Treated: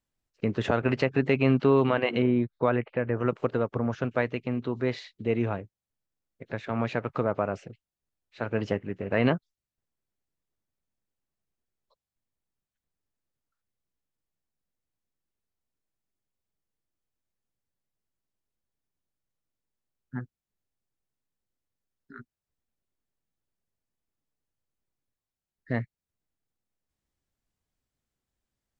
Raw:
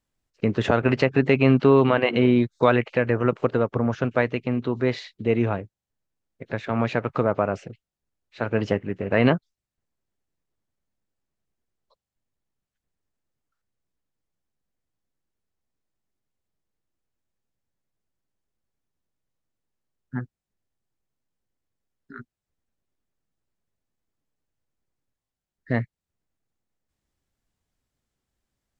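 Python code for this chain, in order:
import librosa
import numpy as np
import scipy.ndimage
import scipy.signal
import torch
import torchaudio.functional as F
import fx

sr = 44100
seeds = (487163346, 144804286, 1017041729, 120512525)

y = fx.air_absorb(x, sr, metres=460.0, at=(2.22, 3.17))
y = y * 10.0 ** (-5.0 / 20.0)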